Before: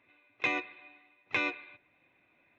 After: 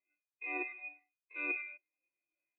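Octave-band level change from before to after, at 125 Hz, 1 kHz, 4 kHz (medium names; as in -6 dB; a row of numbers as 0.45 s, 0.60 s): under -35 dB, -9.5 dB, under -25 dB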